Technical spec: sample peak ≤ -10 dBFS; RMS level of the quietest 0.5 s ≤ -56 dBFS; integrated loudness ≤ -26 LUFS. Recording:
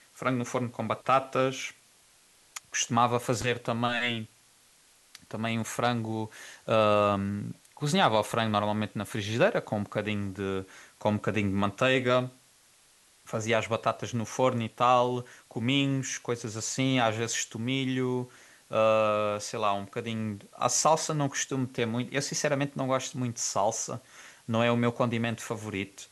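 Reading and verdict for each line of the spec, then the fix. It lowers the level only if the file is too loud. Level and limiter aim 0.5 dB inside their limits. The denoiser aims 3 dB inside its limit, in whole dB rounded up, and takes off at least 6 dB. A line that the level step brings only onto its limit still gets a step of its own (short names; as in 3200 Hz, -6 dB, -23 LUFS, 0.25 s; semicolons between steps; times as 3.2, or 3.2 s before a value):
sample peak -9.0 dBFS: fail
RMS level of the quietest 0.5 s -61 dBFS: OK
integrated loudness -28.5 LUFS: OK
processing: limiter -10.5 dBFS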